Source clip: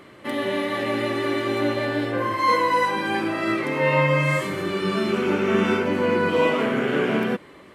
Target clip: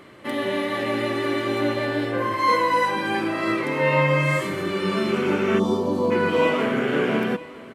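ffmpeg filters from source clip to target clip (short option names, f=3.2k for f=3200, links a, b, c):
-filter_complex "[0:a]asplit=3[a][b][c];[a]afade=t=out:st=5.58:d=0.02[d];[b]asuperstop=centerf=2000:order=12:qfactor=0.89,afade=t=in:st=5.58:d=0.02,afade=t=out:st=6.1:d=0.02[e];[c]afade=t=in:st=6.1:d=0.02[f];[d][e][f]amix=inputs=3:normalize=0,asplit=2[g][h];[h]aecho=0:1:957:0.106[i];[g][i]amix=inputs=2:normalize=0"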